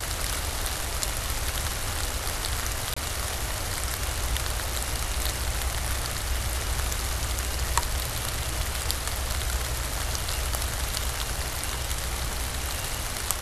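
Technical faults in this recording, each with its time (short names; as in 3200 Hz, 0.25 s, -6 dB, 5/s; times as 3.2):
2.94–2.96 gap 25 ms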